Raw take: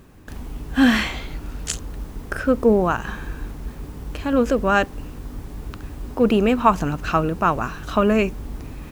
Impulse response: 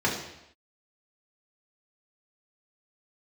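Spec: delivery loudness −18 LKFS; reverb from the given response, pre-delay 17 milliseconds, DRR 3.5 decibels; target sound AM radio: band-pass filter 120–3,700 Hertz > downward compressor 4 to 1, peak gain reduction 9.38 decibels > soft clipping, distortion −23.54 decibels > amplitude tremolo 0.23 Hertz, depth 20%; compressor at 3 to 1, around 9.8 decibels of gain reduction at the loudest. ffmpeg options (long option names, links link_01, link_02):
-filter_complex "[0:a]acompressor=threshold=-24dB:ratio=3,asplit=2[link_01][link_02];[1:a]atrim=start_sample=2205,adelay=17[link_03];[link_02][link_03]afir=irnorm=-1:irlink=0,volume=-16.5dB[link_04];[link_01][link_04]amix=inputs=2:normalize=0,highpass=120,lowpass=3700,acompressor=threshold=-27dB:ratio=4,asoftclip=threshold=-19dB,tremolo=f=0.23:d=0.2,volume=16.5dB"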